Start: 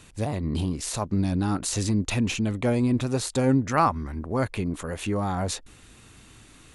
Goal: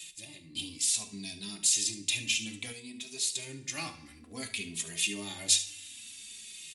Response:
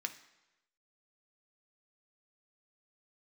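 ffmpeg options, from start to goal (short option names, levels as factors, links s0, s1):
-filter_complex "[1:a]atrim=start_sample=2205,asetrate=61740,aresample=44100[s0];[0:a][s0]afir=irnorm=-1:irlink=0,asplit=3[s1][s2][s3];[s1]afade=t=out:st=0.55:d=0.02[s4];[s2]acontrast=82,afade=t=in:st=0.55:d=0.02,afade=t=out:st=2.71:d=0.02[s5];[s3]afade=t=in:st=2.71:d=0.02[s6];[s4][s5][s6]amix=inputs=3:normalize=0,equalizer=f=84:w=0.52:g=13.5,aecho=1:1:72:0.188,aexciter=amount=13.1:drive=3.7:freq=2100,dynaudnorm=f=220:g=13:m=3.76,asplit=2[s7][s8];[s8]adelay=2.8,afreqshift=-0.59[s9];[s7][s9]amix=inputs=2:normalize=1,volume=0.473"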